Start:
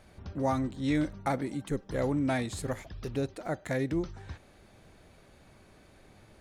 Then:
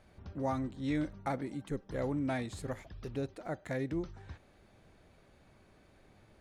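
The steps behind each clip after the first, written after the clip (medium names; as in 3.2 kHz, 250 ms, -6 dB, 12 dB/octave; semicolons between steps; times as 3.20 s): treble shelf 5.2 kHz -6 dB; trim -5 dB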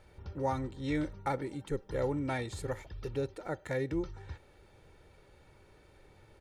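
comb 2.2 ms, depth 52%; trim +1.5 dB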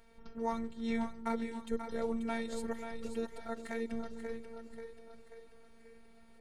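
robot voice 228 Hz; two-band feedback delay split 360 Hz, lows 406 ms, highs 536 ms, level -8 dB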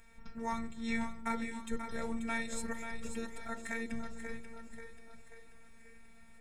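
reverberation RT60 0.45 s, pre-delay 3 ms, DRR 11.5 dB; trim +3 dB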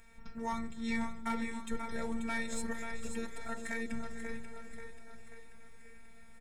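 saturation -23.5 dBFS, distortion -22 dB; feedback delay 447 ms, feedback 52%, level -15.5 dB; trim +1 dB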